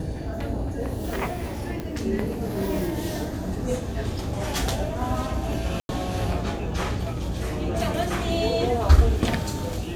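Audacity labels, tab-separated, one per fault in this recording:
1.800000	1.800000	pop -18 dBFS
5.800000	5.890000	gap 91 ms

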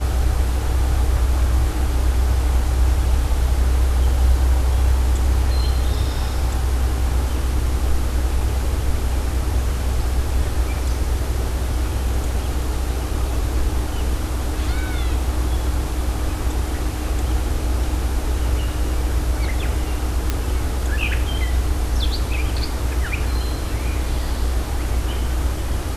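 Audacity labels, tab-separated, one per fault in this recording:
20.300000	20.300000	pop -6 dBFS

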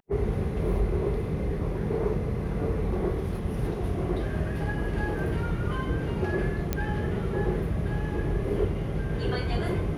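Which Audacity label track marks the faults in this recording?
6.730000	6.730000	pop -12 dBFS

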